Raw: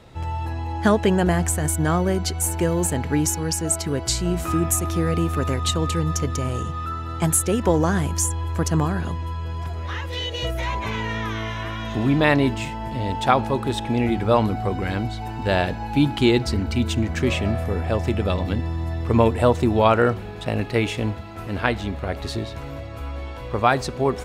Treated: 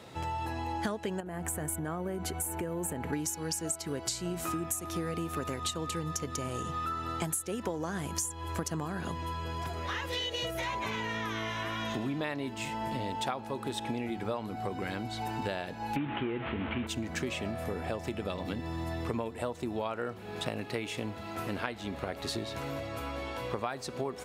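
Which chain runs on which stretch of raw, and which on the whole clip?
1.2–3.13 bell 5000 Hz -14.5 dB 1.4 oct + compressor 12:1, threshold -24 dBFS
15.96–16.87 delta modulation 16 kbps, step -25.5 dBFS + fast leveller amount 50%
whole clip: Bessel high-pass 170 Hz, order 2; high shelf 5600 Hz +5 dB; compressor 10:1, threshold -31 dBFS

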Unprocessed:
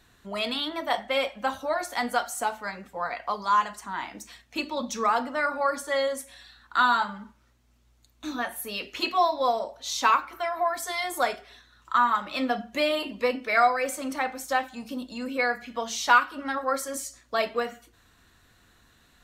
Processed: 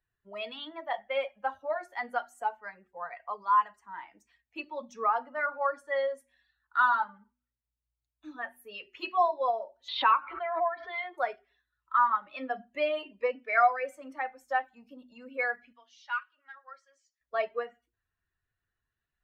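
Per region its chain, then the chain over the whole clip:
9.88–11.18 steep low-pass 4200 Hz 48 dB/oct + bell 68 Hz -4.5 dB 2.6 oct + backwards sustainer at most 37 dB/s
15.73–17.21 band-pass 4800 Hz, Q 0.74 + air absorption 110 m
whole clip: per-bin expansion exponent 1.5; three-band isolator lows -16 dB, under 400 Hz, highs -22 dB, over 2700 Hz; de-hum 122.3 Hz, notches 3

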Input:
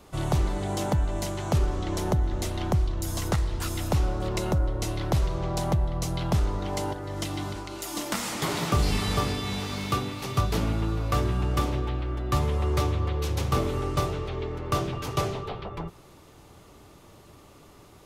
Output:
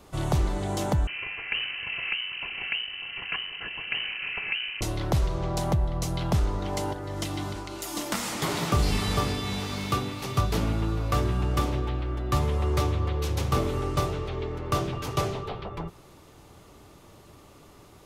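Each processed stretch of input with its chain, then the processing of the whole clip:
1.07–4.81 minimum comb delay 3.1 ms + HPF 220 Hz 6 dB/oct + inverted band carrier 3000 Hz
whole clip: dry

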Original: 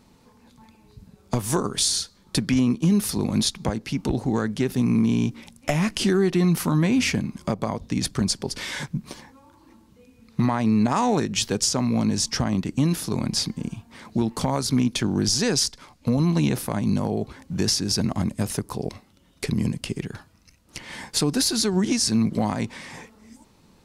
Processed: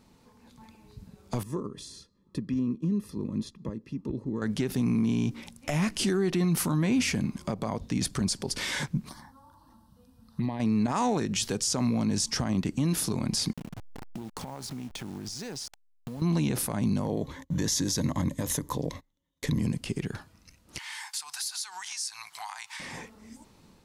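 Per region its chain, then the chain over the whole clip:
1.43–4.42 running mean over 59 samples + tilt +3 dB/oct
9.09–10.6 bell 6900 Hz -10.5 dB 0.36 oct + compressor 1.5:1, threshold -37 dBFS + envelope phaser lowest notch 360 Hz, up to 1400 Hz, full sweep at -24.5 dBFS
13.53–16.22 level-crossing sampler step -31.5 dBFS + bell 830 Hz +5.5 dB 0.32 oct + compressor 10:1, threshold -34 dBFS
17.05–19.6 gate -47 dBFS, range -25 dB + ripple EQ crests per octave 1.1, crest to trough 9 dB
20.78–22.8 elliptic high-pass 830 Hz + high shelf 3800 Hz +7.5 dB + compressor 4:1, threshold -35 dBFS
whole clip: dynamic EQ 9200 Hz, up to +5 dB, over -38 dBFS, Q 0.86; limiter -18 dBFS; AGC gain up to 3.5 dB; gain -4 dB

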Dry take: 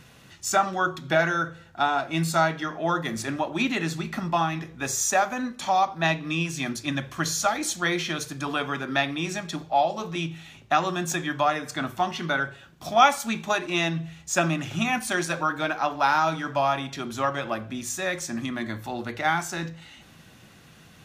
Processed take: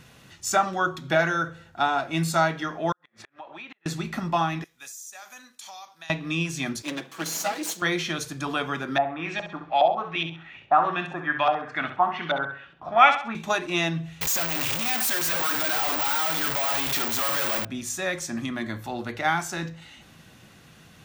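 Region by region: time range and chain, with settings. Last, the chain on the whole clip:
2.92–3.86 three-band isolator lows -16 dB, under 570 Hz, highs -22 dB, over 3700 Hz + compressor 4:1, threshold -39 dBFS + flipped gate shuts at -30 dBFS, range -34 dB
4.64–6.1 pre-emphasis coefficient 0.97 + compressor 16:1, threshold -37 dBFS + flutter echo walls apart 11.5 m, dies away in 0.21 s
6.82–7.82 minimum comb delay 6.2 ms + HPF 200 Hz 24 dB/oct + dynamic EQ 1500 Hz, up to -4 dB, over -40 dBFS, Q 0.73
8.98–13.35 low shelf 400 Hz -8 dB + LFO low-pass saw up 2.4 Hz 660–3500 Hz + flutter echo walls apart 11.4 m, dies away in 0.42 s
14.21–17.65 infinite clipping + low shelf 370 Hz -11.5 dB + careless resampling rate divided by 2×, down filtered, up zero stuff
whole clip: dry

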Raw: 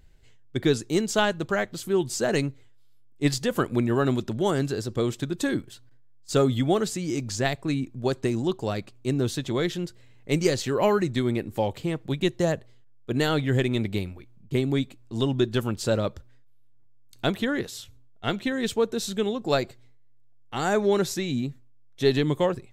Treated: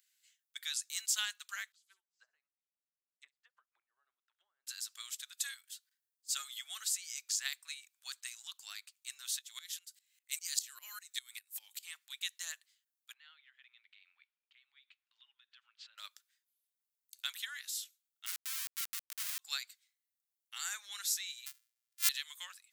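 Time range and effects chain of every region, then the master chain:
1.72–4.67 treble ducked by the level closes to 340 Hz, closed at -20 dBFS + feedback echo 66 ms, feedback 28%, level -19 dB + upward expander 2.5:1, over -40 dBFS
9.39–11.83 high shelf 4800 Hz +10 dB + dB-ramp tremolo swelling 5 Hz, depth 20 dB
13.13–15.98 LPF 3200 Hz 24 dB/oct + compressor 20:1, threshold -37 dBFS
18.26–19.39 inverse Chebyshev low-pass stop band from 5700 Hz, stop band 50 dB + bell 91 Hz -10.5 dB 0.36 oct + Schmitt trigger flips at -29 dBFS
21.46–22.09 sample sorter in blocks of 128 samples + HPF 1200 Hz 6 dB/oct
whole clip: HPF 1300 Hz 24 dB/oct; differentiator; gain +1 dB

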